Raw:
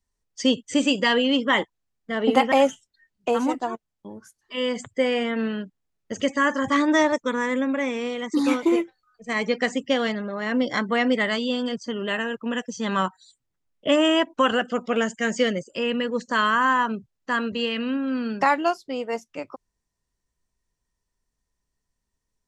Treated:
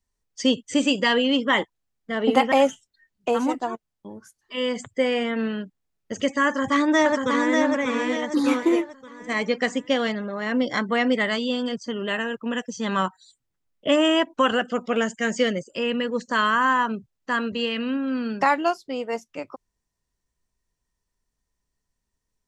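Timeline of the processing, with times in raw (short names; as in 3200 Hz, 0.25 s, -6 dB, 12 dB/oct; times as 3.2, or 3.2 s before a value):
6.46–7.57 echo throw 0.59 s, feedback 40%, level -3.5 dB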